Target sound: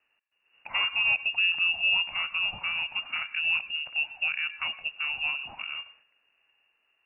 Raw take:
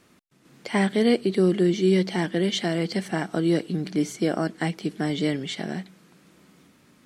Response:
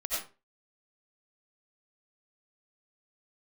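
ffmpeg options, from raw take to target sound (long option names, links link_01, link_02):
-filter_complex "[0:a]agate=range=-9dB:threshold=-52dB:ratio=16:detection=peak,lowshelf=frequency=77:gain=-8.5,asplit=2[link_01][link_02];[1:a]atrim=start_sample=2205,lowpass=frequency=2000:width=0.5412,lowpass=frequency=2000:width=1.3066[link_03];[link_02][link_03]afir=irnorm=-1:irlink=0,volume=-18.5dB[link_04];[link_01][link_04]amix=inputs=2:normalize=0,lowpass=frequency=2600:width_type=q:width=0.5098,lowpass=frequency=2600:width_type=q:width=0.6013,lowpass=frequency=2600:width_type=q:width=0.9,lowpass=frequency=2600:width_type=q:width=2.563,afreqshift=-3000,volume=-5.5dB"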